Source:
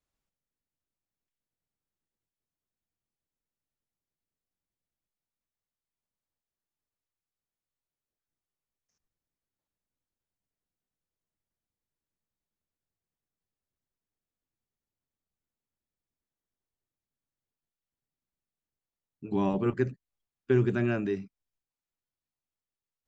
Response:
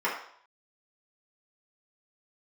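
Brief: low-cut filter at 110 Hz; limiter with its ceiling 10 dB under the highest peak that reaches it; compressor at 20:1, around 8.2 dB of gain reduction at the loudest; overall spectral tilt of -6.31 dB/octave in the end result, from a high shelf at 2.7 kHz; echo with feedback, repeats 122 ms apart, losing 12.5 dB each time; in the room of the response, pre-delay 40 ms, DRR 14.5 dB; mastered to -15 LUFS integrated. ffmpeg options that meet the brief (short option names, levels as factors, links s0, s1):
-filter_complex "[0:a]highpass=110,highshelf=f=2700:g=-8,acompressor=threshold=0.0447:ratio=20,alimiter=level_in=1.58:limit=0.0631:level=0:latency=1,volume=0.631,aecho=1:1:122|244|366:0.237|0.0569|0.0137,asplit=2[s0][s1];[1:a]atrim=start_sample=2205,adelay=40[s2];[s1][s2]afir=irnorm=-1:irlink=0,volume=0.0473[s3];[s0][s3]amix=inputs=2:normalize=0,volume=15"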